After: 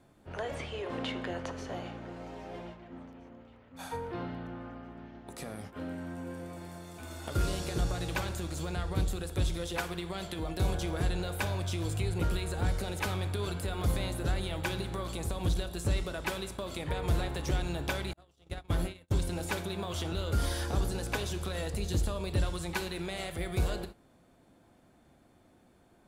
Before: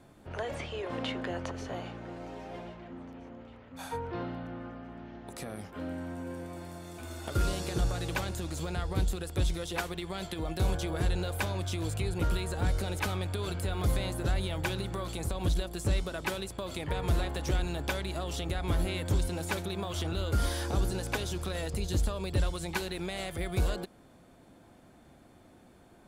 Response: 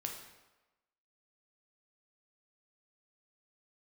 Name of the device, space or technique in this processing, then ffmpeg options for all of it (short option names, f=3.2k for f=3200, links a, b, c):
keyed gated reverb: -filter_complex "[0:a]asplit=3[a][b][c];[1:a]atrim=start_sample=2205[d];[b][d]afir=irnorm=-1:irlink=0[e];[c]apad=whole_len=1149934[f];[e][f]sidechaingate=range=-33dB:threshold=-44dB:ratio=16:detection=peak,volume=-1dB[g];[a][g]amix=inputs=2:normalize=0,asettb=1/sr,asplit=3[h][i][j];[h]atrim=end=18.134[k];[i]atrim=start=18.13:end=19.27,asetpts=PTS-STARTPTS,afade=t=in:d=0.004:c=qsin,afade=t=out:st=1.136:d=0.004:c=qsin,agate=range=-45dB:threshold=-25dB:ratio=16:detection=peak[l];[j]atrim=start=19.266[m];[k][l]acrossfade=d=0.004:c1=hsin:c2=qsin[n];[n][m]acrossfade=d=0.004:c1=qsin:c2=hsin,volume=-5.5dB"